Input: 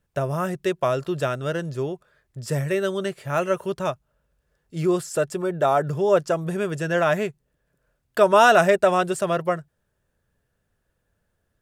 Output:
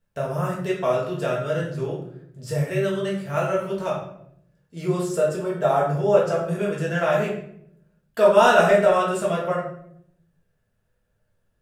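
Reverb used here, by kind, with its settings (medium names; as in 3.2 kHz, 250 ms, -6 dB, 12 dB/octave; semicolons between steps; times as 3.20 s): simulated room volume 140 m³, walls mixed, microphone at 1.6 m; trim -7 dB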